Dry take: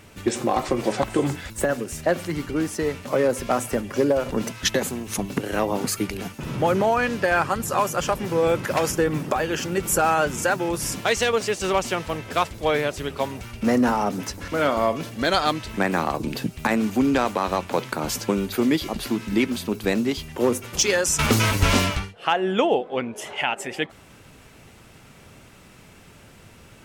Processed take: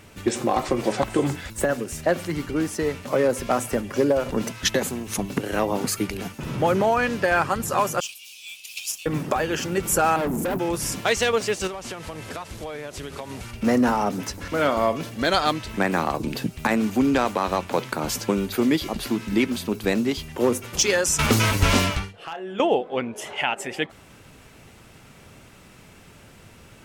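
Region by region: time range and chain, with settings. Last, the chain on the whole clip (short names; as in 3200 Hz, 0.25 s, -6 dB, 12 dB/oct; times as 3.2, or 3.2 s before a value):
8–9.06 steep high-pass 2400 Hz 96 dB/oct + modulation noise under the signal 19 dB
10.16–10.59 EQ curve 100 Hz 0 dB, 230 Hz +12 dB, 410 Hz +8 dB, 4100 Hz -23 dB, 15000 Hz +9 dB + hard clip -22.5 dBFS
11.67–13.51 delta modulation 64 kbps, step -35.5 dBFS + compressor 12:1, threshold -29 dBFS
22.11–22.6 doubler 30 ms -8 dB + compressor 2:1, threshold -40 dBFS + hard clip -24.5 dBFS
whole clip: dry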